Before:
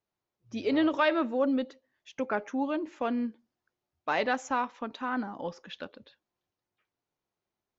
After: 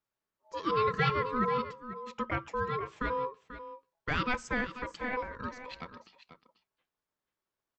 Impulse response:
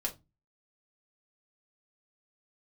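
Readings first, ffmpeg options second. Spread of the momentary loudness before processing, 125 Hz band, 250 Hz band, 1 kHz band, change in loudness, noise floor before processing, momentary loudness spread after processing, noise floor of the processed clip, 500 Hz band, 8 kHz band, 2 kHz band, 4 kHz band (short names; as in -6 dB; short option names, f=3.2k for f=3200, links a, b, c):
15 LU, +13.5 dB, -8.5 dB, +0.5 dB, -2.5 dB, under -85 dBFS, 16 LU, under -85 dBFS, -3.5 dB, n/a, 0.0 dB, -1.5 dB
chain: -af "aecho=1:1:489:0.237,aeval=exprs='val(0)*sin(2*PI*750*n/s)':c=same"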